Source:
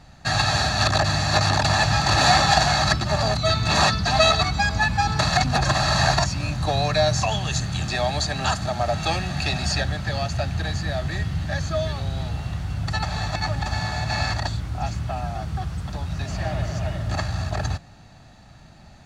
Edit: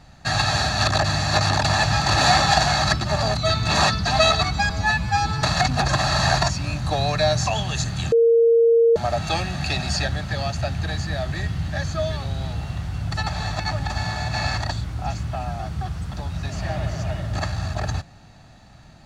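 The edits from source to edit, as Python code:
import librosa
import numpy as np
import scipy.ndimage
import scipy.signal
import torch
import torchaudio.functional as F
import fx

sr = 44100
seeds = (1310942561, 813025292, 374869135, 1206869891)

y = fx.edit(x, sr, fx.stretch_span(start_s=4.7, length_s=0.48, factor=1.5),
    fx.bleep(start_s=7.88, length_s=0.84, hz=462.0, db=-12.0), tone=tone)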